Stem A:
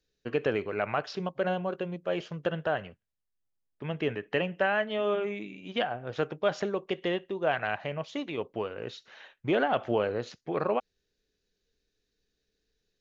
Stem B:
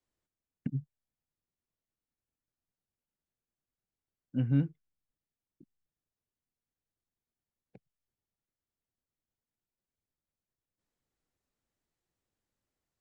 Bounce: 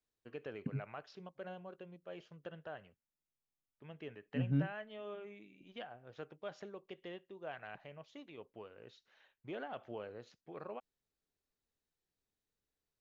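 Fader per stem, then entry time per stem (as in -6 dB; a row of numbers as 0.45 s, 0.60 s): -18.0 dB, -6.0 dB; 0.00 s, 0.00 s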